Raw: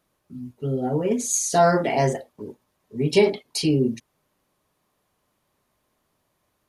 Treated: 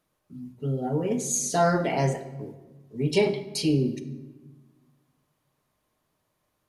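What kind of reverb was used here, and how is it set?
rectangular room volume 750 cubic metres, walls mixed, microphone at 0.52 metres
level −4 dB

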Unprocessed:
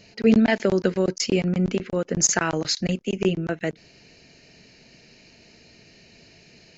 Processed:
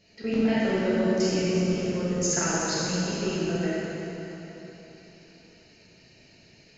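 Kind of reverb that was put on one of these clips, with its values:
dense smooth reverb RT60 3.7 s, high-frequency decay 0.8×, DRR −9.5 dB
level −13 dB

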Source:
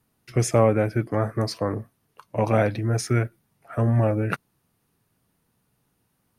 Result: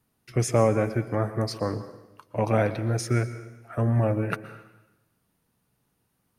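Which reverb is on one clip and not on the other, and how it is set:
dense smooth reverb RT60 0.99 s, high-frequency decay 0.95×, pre-delay 105 ms, DRR 12.5 dB
level −2.5 dB

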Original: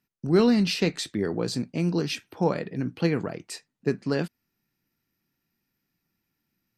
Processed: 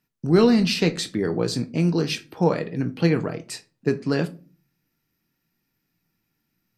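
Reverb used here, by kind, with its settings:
rectangular room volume 190 cubic metres, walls furnished, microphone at 0.53 metres
level +3 dB

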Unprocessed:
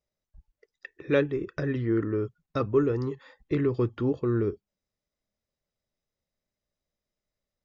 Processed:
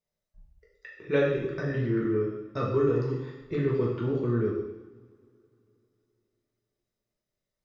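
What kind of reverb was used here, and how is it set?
coupled-rooms reverb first 0.92 s, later 3.3 s, from −25 dB, DRR −5 dB
level −6 dB

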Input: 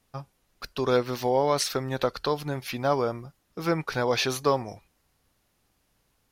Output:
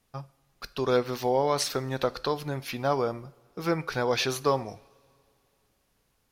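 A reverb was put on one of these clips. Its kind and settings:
coupled-rooms reverb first 0.53 s, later 2.7 s, from −18 dB, DRR 16 dB
level −1.5 dB

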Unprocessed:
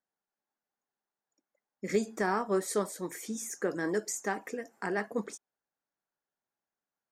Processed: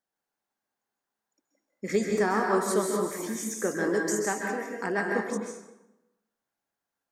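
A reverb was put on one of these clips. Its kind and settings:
dense smooth reverb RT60 0.98 s, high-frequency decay 0.65×, pre-delay 120 ms, DRR 0.5 dB
level +2.5 dB

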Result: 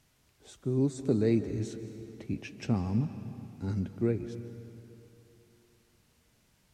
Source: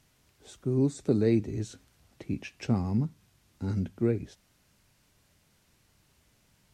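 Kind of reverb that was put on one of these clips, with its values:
comb and all-pass reverb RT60 3.1 s, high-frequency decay 0.8×, pre-delay 110 ms, DRR 10.5 dB
level −2 dB

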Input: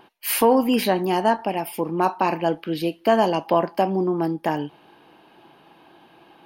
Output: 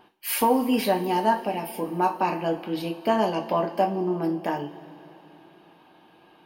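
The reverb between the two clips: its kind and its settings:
coupled-rooms reverb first 0.25 s, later 3.6 s, from −21 dB, DRR 2.5 dB
level −5.5 dB

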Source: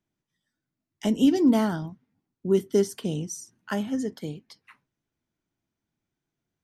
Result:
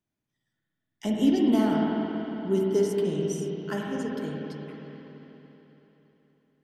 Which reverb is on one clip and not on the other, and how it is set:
spring reverb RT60 3.7 s, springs 47/55 ms, chirp 65 ms, DRR −2.5 dB
level −4.5 dB

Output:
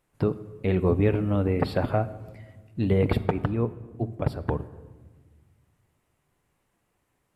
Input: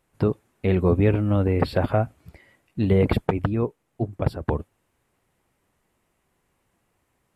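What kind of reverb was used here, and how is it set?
rectangular room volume 1,200 cubic metres, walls mixed, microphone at 0.37 metres
level −3 dB

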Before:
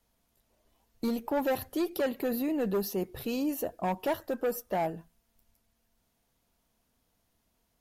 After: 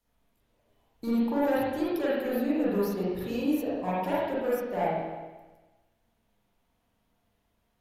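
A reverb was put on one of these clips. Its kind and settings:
spring reverb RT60 1.2 s, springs 39/49/56 ms, chirp 45 ms, DRR −8.5 dB
level −6.5 dB

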